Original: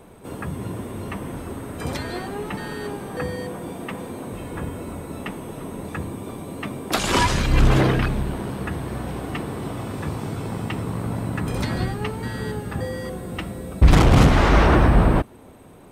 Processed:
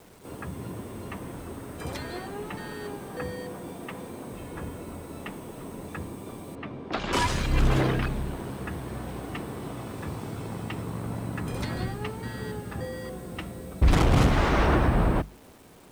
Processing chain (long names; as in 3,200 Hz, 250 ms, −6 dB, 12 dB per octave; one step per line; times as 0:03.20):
mains-hum notches 50/100/150/200/250 Hz
bit-depth reduction 8 bits, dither none
0:06.55–0:07.13: high-frequency loss of the air 220 metres
level −6 dB